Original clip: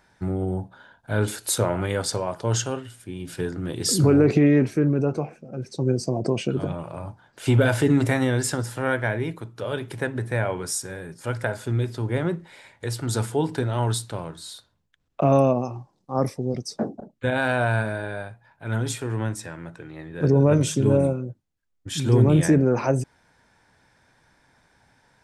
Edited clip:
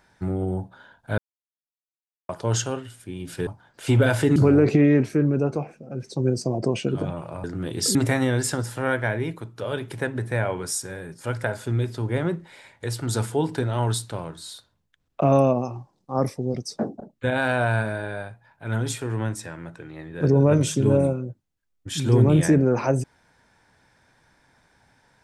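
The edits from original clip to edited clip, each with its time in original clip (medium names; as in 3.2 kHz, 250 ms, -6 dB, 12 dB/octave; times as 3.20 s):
1.18–2.29 s: mute
3.47–3.98 s: swap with 7.06–7.95 s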